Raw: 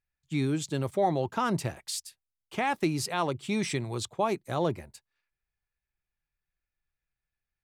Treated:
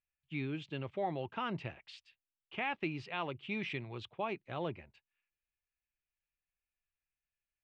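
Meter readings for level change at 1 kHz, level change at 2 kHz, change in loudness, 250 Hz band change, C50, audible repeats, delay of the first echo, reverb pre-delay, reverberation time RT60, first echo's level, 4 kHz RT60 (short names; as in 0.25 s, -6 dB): -10.0 dB, -4.5 dB, -9.0 dB, -10.5 dB, none, none, none, none, none, none, none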